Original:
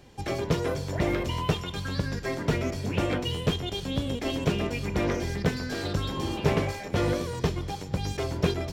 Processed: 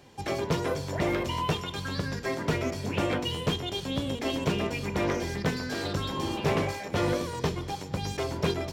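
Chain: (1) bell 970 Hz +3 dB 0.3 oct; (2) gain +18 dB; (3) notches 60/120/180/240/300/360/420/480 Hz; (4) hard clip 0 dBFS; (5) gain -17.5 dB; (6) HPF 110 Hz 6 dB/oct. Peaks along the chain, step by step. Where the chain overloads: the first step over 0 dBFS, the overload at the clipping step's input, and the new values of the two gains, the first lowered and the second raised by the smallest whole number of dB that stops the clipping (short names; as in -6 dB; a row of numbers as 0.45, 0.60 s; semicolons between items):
-9.5, +8.5, +7.0, 0.0, -17.5, -14.5 dBFS; step 2, 7.0 dB; step 2 +11 dB, step 5 -10.5 dB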